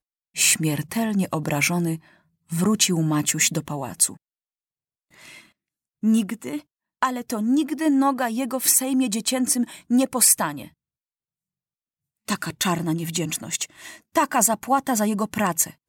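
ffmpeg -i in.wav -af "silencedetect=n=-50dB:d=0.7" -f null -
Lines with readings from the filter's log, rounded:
silence_start: 4.17
silence_end: 5.11 | silence_duration: 0.94
silence_start: 10.71
silence_end: 12.28 | silence_duration: 1.57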